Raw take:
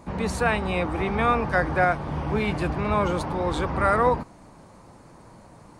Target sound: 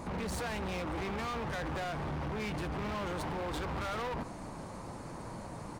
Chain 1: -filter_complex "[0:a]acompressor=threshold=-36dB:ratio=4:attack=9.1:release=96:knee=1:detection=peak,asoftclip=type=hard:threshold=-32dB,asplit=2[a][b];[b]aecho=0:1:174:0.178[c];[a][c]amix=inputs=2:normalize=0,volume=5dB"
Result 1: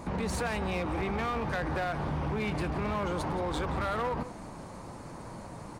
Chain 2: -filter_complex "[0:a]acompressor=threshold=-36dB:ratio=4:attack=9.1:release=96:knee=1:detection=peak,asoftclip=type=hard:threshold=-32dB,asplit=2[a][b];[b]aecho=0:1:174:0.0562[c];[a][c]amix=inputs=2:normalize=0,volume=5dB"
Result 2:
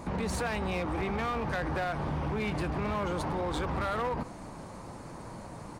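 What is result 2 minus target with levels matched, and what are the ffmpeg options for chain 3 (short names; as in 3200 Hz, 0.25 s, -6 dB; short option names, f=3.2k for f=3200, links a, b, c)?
hard clip: distortion -8 dB
-filter_complex "[0:a]acompressor=threshold=-36dB:ratio=4:attack=9.1:release=96:knee=1:detection=peak,asoftclip=type=hard:threshold=-39.5dB,asplit=2[a][b];[b]aecho=0:1:174:0.0562[c];[a][c]amix=inputs=2:normalize=0,volume=5dB"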